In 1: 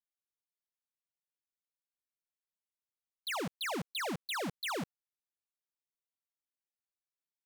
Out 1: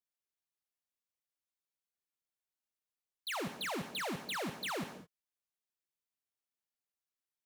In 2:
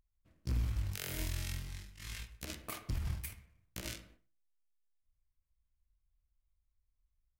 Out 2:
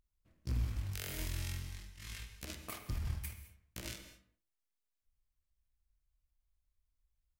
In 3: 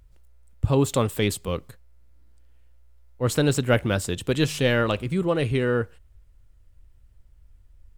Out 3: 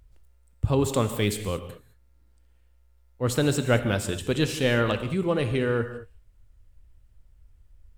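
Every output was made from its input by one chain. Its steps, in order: gated-style reverb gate 240 ms flat, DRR 9 dB; trim -2 dB

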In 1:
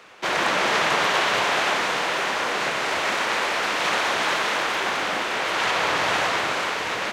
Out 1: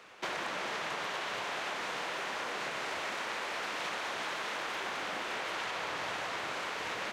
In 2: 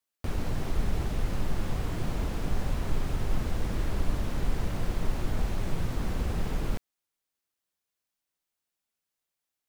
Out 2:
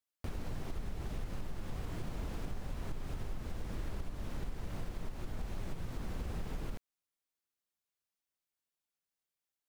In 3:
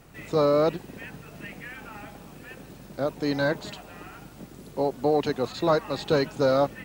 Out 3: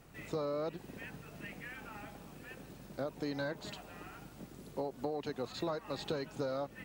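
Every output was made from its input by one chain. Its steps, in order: compression 10:1, threshold -27 dBFS; trim -6.5 dB

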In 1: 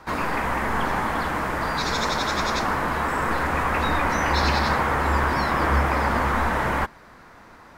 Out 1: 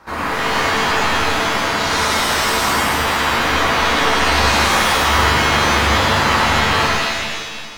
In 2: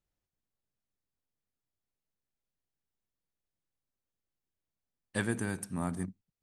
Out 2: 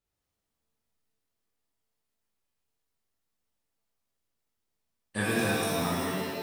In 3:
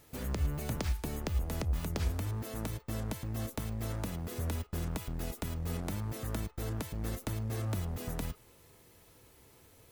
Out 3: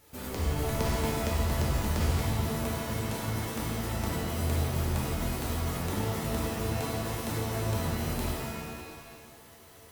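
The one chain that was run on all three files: bass shelf 140 Hz -4.5 dB; pitch-shifted reverb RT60 1.5 s, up +7 st, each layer -2 dB, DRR -5 dB; trim -1 dB

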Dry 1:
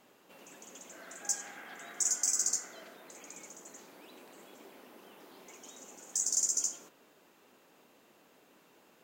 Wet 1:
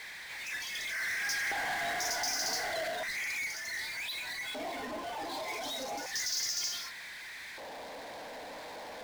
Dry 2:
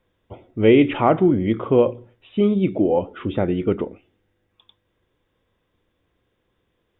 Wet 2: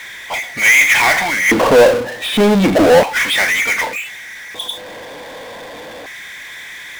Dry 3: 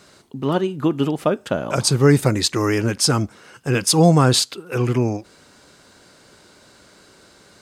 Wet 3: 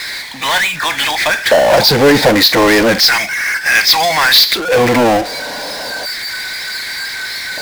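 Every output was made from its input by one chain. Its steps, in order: static phaser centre 1.9 kHz, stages 8; spectral noise reduction 14 dB; LFO high-pass square 0.33 Hz 390–2000 Hz; steep low-pass 4.9 kHz 36 dB/octave; power-law waveshaper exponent 0.35; trim +6 dB

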